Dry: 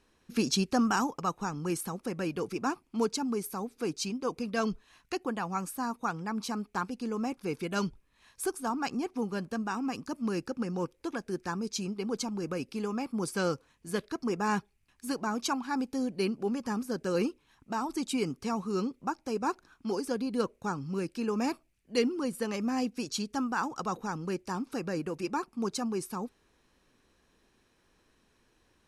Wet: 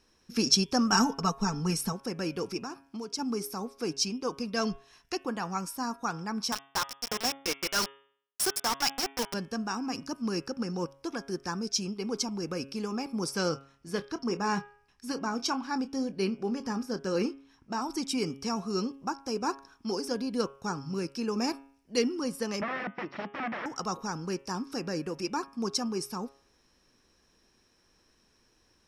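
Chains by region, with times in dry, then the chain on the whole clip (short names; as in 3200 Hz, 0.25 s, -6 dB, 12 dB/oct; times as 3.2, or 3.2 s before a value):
0.92–1.93 low shelf 130 Hz +10.5 dB + comb 4.5 ms, depth 83%
2.6–3.19 HPF 51 Hz + compressor 4:1, threshold -36 dBFS
6.52–9.34 HPF 1100 Hz 6 dB/oct + companded quantiser 2-bit
13.49–17.82 high shelf 6800 Hz -9 dB + doubler 26 ms -13 dB
22.61–23.66 wrapped overs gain 30 dB + speaker cabinet 150–2400 Hz, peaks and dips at 190 Hz +5 dB, 340 Hz +5 dB, 610 Hz +5 dB, 1200 Hz +4 dB, 1900 Hz +6 dB
whole clip: bell 5400 Hz +14.5 dB 0.23 oct; de-hum 137.3 Hz, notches 26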